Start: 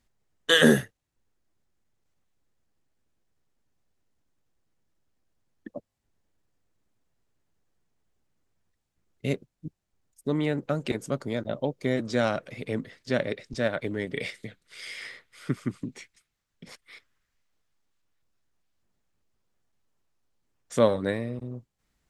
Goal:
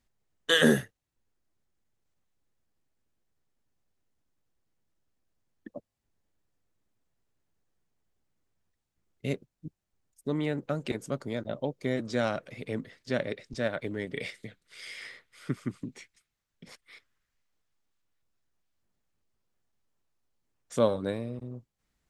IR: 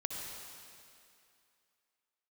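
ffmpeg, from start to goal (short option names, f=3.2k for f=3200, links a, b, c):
-filter_complex "[0:a]asettb=1/sr,asplit=3[a][b][c];[a]atrim=end=20.764[d];[b]atrim=start=20.76:end=21.34,asetpts=PTS-STARTPTS,afade=t=in:d=0.004:c=qsin,afade=t=out:st=0.576:d=0.004:c=qsin,equalizer=f=1.9k:w=5.3:g=-12.5[e];[c]atrim=start=21.336[f];[d][e]acrossfade=d=0.004:c1=hsin:c2=qsin[g];[g][f]acrossfade=d=0.004:c1=qsin:c2=hsin,volume=-3.5dB"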